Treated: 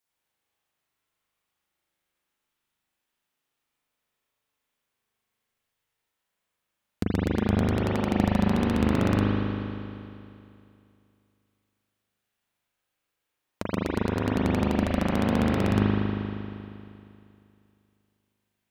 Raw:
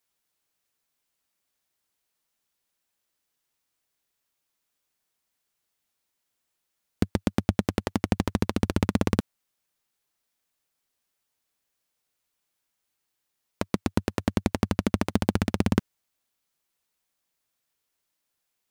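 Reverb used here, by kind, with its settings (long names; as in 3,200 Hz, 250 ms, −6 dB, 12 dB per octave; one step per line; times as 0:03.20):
spring reverb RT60 2.6 s, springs 39 ms, chirp 70 ms, DRR −7 dB
level −5 dB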